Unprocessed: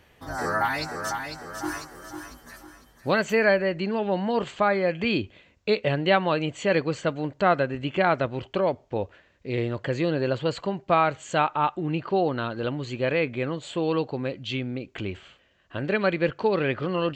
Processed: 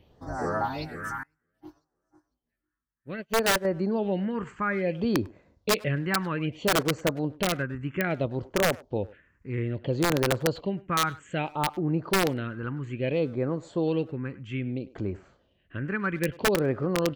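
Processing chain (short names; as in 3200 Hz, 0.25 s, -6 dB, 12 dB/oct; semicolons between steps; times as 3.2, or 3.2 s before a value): high shelf 3000 Hz -9.5 dB; phaser stages 4, 0.61 Hz, lowest notch 600–3200 Hz; wrapped overs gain 16.5 dB; speakerphone echo 0.1 s, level -18 dB; 1.23–3.65 upward expander 2.5:1, over -44 dBFS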